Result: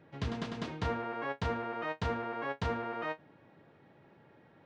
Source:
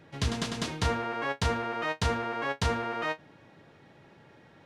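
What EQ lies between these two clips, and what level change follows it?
head-to-tape spacing loss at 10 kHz 24 dB
low-shelf EQ 80 Hz −9 dB
−2.5 dB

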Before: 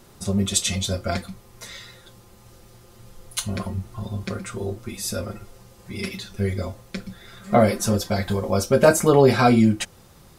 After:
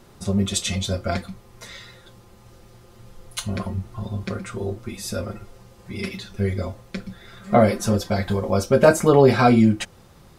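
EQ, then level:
high-shelf EQ 5,400 Hz −7.5 dB
+1.0 dB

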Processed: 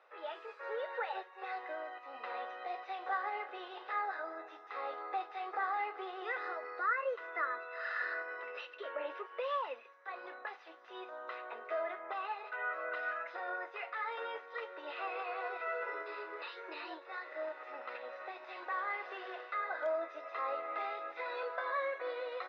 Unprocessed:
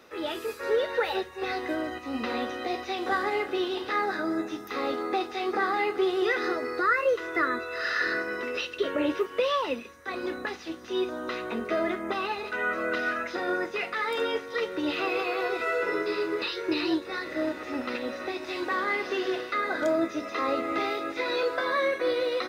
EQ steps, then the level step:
high-pass filter 630 Hz 24 dB per octave
head-to-tape spacing loss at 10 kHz 42 dB
−2.5 dB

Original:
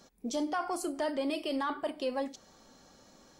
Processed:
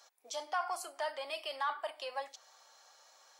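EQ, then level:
high-pass filter 690 Hz 24 dB per octave
dynamic equaliser 8,700 Hz, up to −4 dB, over −55 dBFS, Q 0.84
0.0 dB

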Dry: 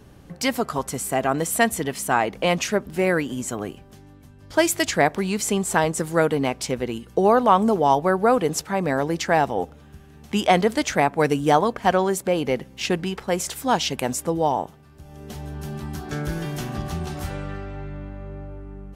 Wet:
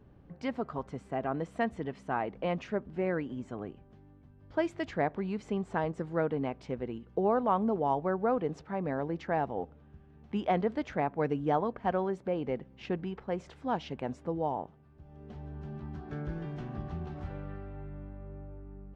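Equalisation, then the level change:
head-to-tape spacing loss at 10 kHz 38 dB
−8.5 dB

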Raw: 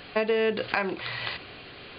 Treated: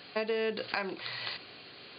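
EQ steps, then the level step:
high-pass filter 130 Hz 12 dB per octave
parametric band 4,500 Hz +9 dB 0.46 octaves
−7.0 dB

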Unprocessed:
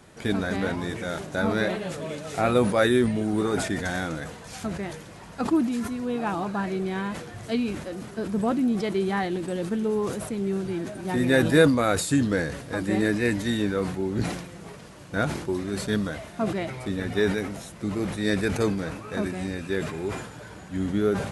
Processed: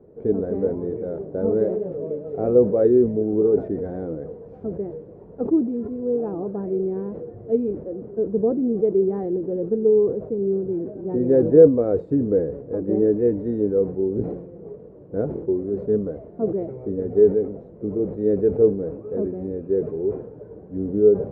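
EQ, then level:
low-pass with resonance 450 Hz, resonance Q 4.9
−2.5 dB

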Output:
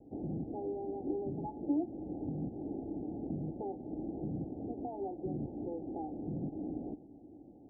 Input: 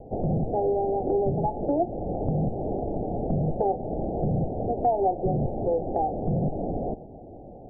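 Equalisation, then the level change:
formant resonators in series u
high-pass filter 43 Hz
high-frequency loss of the air 480 metres
−1.5 dB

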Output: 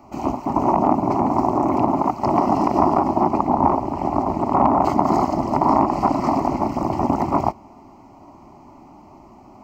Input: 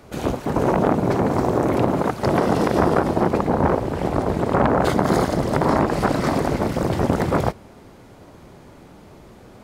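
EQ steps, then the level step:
flat-topped bell 510 Hz +12.5 dB 2.5 octaves
phaser with its sweep stopped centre 2,400 Hz, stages 8
−5.0 dB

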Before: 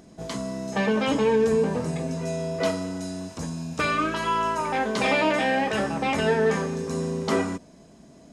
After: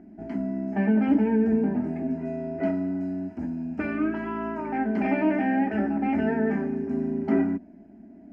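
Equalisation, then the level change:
high-frequency loss of the air 390 metres
parametric band 210 Hz +12.5 dB 1.6 octaves
phaser with its sweep stopped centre 740 Hz, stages 8
−3.0 dB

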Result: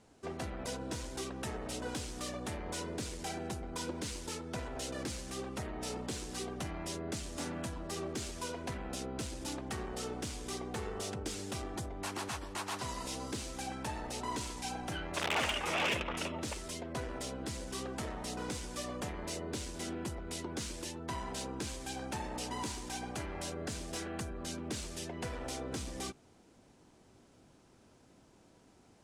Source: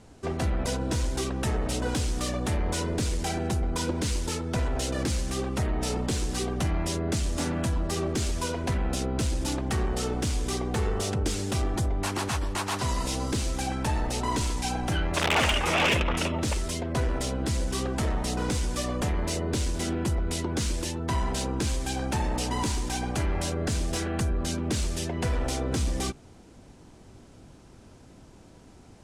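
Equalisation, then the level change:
low-shelf EQ 120 Hz −11.5 dB
−8.5 dB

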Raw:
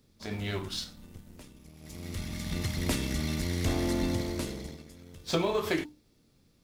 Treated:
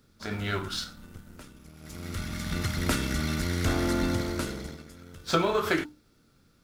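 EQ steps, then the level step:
parametric band 1,400 Hz +14 dB 0.35 octaves
+2.0 dB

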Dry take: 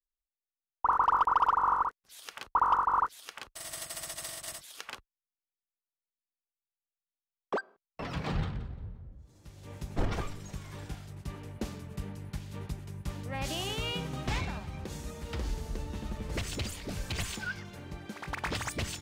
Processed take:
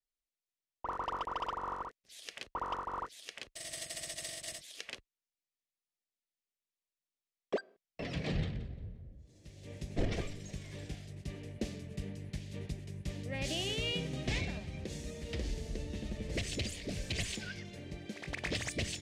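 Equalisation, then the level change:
low-pass filter 8,600 Hz 12 dB per octave
low-shelf EQ 110 Hz −4.5 dB
flat-topped bell 1,100 Hz −13 dB 1.1 octaves
0.0 dB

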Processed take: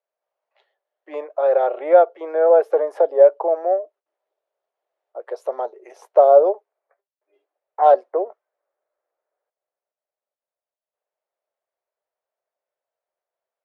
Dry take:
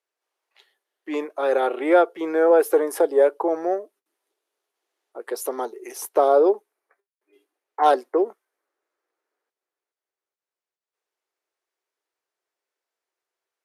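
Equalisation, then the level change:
high-pass with resonance 600 Hz, resonance Q 4.9
head-to-tape spacing loss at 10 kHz 24 dB
−3.0 dB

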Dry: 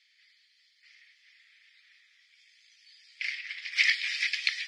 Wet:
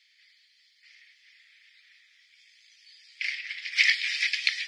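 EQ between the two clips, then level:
high-pass filter 1,300 Hz 12 dB per octave
+3.0 dB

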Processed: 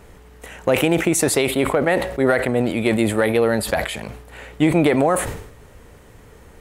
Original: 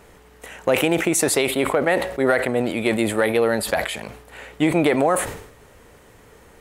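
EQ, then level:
low-shelf EQ 190 Hz +8.5 dB
0.0 dB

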